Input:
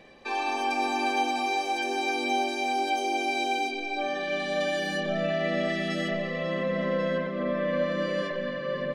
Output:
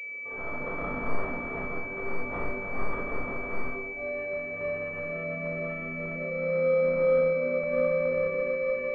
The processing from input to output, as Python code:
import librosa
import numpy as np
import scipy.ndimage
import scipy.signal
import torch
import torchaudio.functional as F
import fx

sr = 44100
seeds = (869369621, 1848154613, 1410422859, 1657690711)

y = scipy.signal.sosfilt(scipy.signal.butter(4, 170.0, 'highpass', fs=sr, output='sos'), x)
y = y + 0.77 * np.pad(y, (int(2.4 * sr / 1000.0), 0))[:len(y)]
y = (np.mod(10.0 ** (18.5 / 20.0) * y + 1.0, 2.0) - 1.0) / 10.0 ** (18.5 / 20.0)
y = fx.fixed_phaser(y, sr, hz=520.0, stages=8)
y = np.clip(y, -10.0 ** (-21.5 / 20.0), 10.0 ** (-21.5 / 20.0))
y = fx.room_early_taps(y, sr, ms=(29, 60), db=(-4.0, -4.0))
y = fx.room_shoebox(y, sr, seeds[0], volume_m3=3200.0, walls='furnished', distance_m=6.4)
y = fx.pwm(y, sr, carrier_hz=2300.0)
y = F.gain(torch.from_numpy(y), -8.0).numpy()